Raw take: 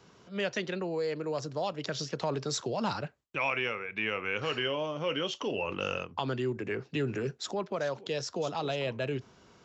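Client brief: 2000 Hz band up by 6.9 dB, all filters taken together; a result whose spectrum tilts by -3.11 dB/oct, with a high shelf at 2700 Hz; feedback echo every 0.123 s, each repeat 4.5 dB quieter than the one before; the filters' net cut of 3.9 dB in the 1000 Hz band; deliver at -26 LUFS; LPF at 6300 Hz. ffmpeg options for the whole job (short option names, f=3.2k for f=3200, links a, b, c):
-af "lowpass=6.3k,equalizer=f=1k:t=o:g=-8.5,equalizer=f=2k:t=o:g=6.5,highshelf=f=2.7k:g=8.5,aecho=1:1:123|246|369|492|615|738|861|984|1107:0.596|0.357|0.214|0.129|0.0772|0.0463|0.0278|0.0167|0.01,volume=2dB"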